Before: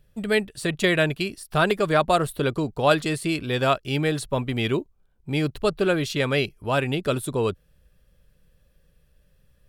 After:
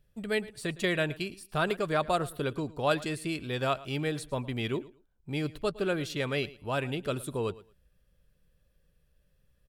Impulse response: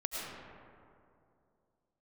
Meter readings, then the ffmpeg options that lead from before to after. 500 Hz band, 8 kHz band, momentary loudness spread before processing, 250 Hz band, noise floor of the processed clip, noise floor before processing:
−8.0 dB, −8.0 dB, 6 LU, −8.0 dB, −70 dBFS, −63 dBFS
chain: -filter_complex "[0:a]aecho=1:1:111|222:0.106|0.0212,asplit=2[link_01][link_02];[1:a]atrim=start_sample=2205,atrim=end_sample=3969,adelay=17[link_03];[link_02][link_03]afir=irnorm=-1:irlink=0,volume=-22.5dB[link_04];[link_01][link_04]amix=inputs=2:normalize=0,volume=-8dB"

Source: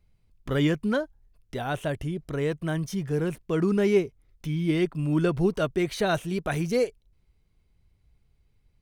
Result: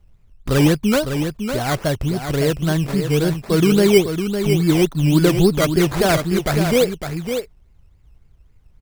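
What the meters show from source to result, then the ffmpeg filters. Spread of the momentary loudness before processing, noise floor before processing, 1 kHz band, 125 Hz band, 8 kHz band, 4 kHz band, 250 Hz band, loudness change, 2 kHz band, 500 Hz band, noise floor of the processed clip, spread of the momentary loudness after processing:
9 LU, −67 dBFS, +9.0 dB, +10.5 dB, +16.0 dB, +13.0 dB, +9.5 dB, +9.0 dB, +8.5 dB, +8.5 dB, −52 dBFS, 9 LU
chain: -af "lowshelf=frequency=93:gain=6,acrusher=samples=13:mix=1:aa=0.000001:lfo=1:lforange=7.8:lforate=3.6,aecho=1:1:556:0.422,volume=8dB"

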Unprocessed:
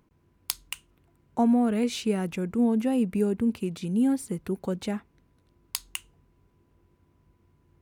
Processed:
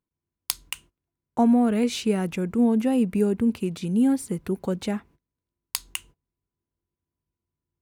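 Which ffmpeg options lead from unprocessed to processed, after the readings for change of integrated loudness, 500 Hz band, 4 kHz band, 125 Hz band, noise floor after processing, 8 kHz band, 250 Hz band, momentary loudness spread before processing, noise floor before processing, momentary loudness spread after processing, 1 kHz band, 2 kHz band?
+3.0 dB, +3.0 dB, +3.0 dB, +3.0 dB, below −85 dBFS, +3.0 dB, +3.0 dB, 13 LU, −66 dBFS, 13 LU, +3.0 dB, +3.0 dB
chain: -af "agate=range=-26dB:threshold=-52dB:ratio=16:detection=peak,volume=3dB"

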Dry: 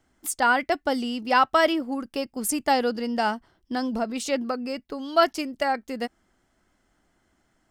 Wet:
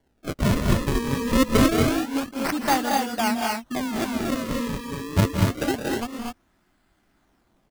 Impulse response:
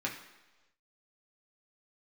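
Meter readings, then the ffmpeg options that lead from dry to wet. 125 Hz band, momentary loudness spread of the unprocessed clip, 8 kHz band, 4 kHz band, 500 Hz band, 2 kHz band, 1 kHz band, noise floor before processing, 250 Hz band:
can't be measured, 11 LU, +1.0 dB, +1.0 dB, −1.0 dB, −2.0 dB, −3.0 dB, −70 dBFS, +5.0 dB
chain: -filter_complex "[0:a]equalizer=frequency=490:width_type=o:width=0.23:gain=-12,acrusher=samples=35:mix=1:aa=0.000001:lfo=1:lforange=56:lforate=0.26,asplit=2[link_01][link_02];[link_02]aecho=0:1:167|193|230|252:0.266|0.376|0.596|0.562[link_03];[link_01][link_03]amix=inputs=2:normalize=0"

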